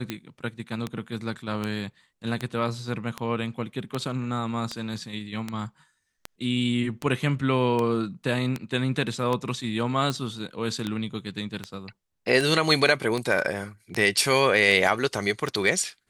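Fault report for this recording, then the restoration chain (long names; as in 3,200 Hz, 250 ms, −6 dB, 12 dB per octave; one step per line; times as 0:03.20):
scratch tick 78 rpm −14 dBFS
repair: click removal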